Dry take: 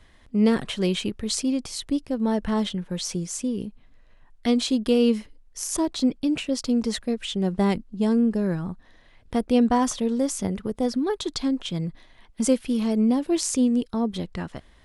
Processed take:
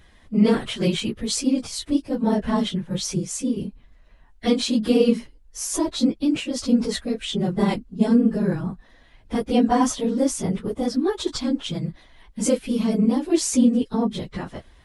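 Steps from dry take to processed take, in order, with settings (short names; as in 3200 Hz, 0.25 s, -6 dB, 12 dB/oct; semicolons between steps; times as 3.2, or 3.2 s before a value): phase scrambler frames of 50 ms; gain +2 dB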